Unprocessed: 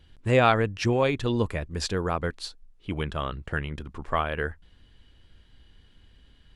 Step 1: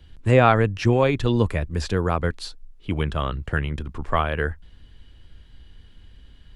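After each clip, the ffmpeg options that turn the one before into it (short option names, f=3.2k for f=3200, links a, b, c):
-filter_complex "[0:a]lowshelf=f=130:g=6,acrossover=split=130|1300|2300[a][b][c][d];[d]alimiter=level_in=5dB:limit=-24dB:level=0:latency=1,volume=-5dB[e];[a][b][c][e]amix=inputs=4:normalize=0,volume=3.5dB"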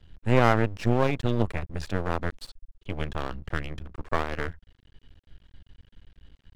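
-af "highshelf=f=5k:g=-8.5,aeval=exprs='max(val(0),0)':c=same,volume=-2dB"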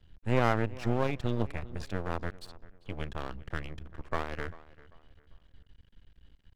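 -filter_complex "[0:a]asplit=2[a][b];[b]adelay=394,lowpass=f=3.6k:p=1,volume=-19.5dB,asplit=2[c][d];[d]adelay=394,lowpass=f=3.6k:p=1,volume=0.35,asplit=2[e][f];[f]adelay=394,lowpass=f=3.6k:p=1,volume=0.35[g];[a][c][e][g]amix=inputs=4:normalize=0,volume=-6dB"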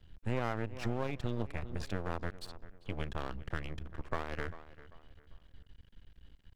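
-af "acompressor=threshold=-32dB:ratio=3,volume=1dB"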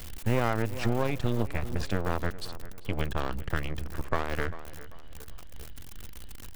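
-af "aeval=exprs='val(0)+0.5*0.0075*sgn(val(0))':c=same,volume=7.5dB"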